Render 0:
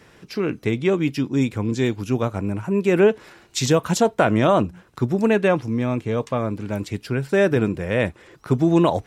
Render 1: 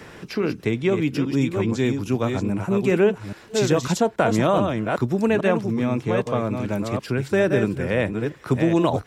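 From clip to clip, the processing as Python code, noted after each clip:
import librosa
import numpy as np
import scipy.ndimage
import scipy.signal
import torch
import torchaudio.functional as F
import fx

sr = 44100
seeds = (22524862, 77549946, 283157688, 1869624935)

y = fx.reverse_delay(x, sr, ms=416, wet_db=-6.0)
y = fx.band_squash(y, sr, depth_pct=40)
y = y * 10.0 ** (-2.0 / 20.0)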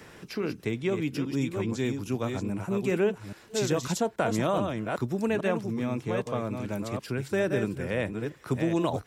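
y = fx.high_shelf(x, sr, hz=6400.0, db=7.0)
y = y * 10.0 ** (-7.5 / 20.0)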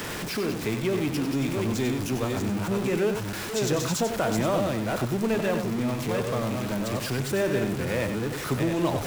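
y = x + 0.5 * 10.0 ** (-27.5 / 20.0) * np.sign(x)
y = y + 10.0 ** (-8.0 / 20.0) * np.pad(y, (int(94 * sr / 1000.0), 0))[:len(y)]
y = y * 10.0 ** (-1.5 / 20.0)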